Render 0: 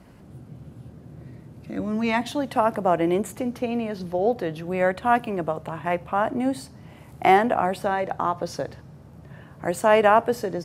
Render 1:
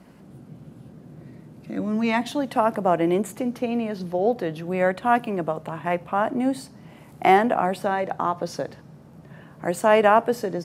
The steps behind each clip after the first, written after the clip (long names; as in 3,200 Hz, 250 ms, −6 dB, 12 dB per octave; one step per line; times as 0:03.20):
low shelf with overshoot 130 Hz −7 dB, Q 1.5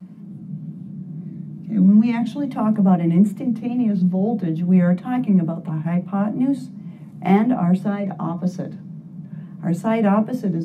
tape wow and flutter 88 cents
on a send at −1.5 dB: convolution reverb RT60 0.15 s, pre-delay 3 ms
on the sum: level −8.5 dB